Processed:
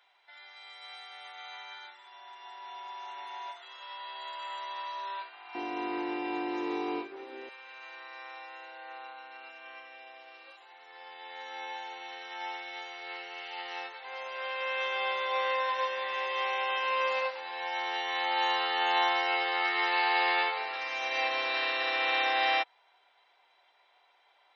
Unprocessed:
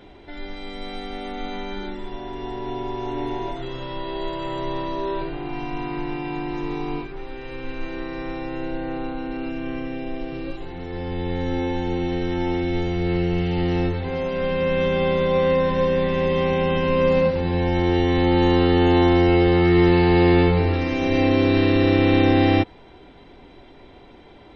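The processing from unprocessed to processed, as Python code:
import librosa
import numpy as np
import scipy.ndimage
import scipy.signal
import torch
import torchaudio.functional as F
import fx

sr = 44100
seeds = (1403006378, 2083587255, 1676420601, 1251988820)

y = fx.highpass(x, sr, hz=fx.steps((0.0, 890.0), (5.55, 320.0), (7.49, 770.0)), slope=24)
y = fx.upward_expand(y, sr, threshold_db=-49.0, expansion=1.5)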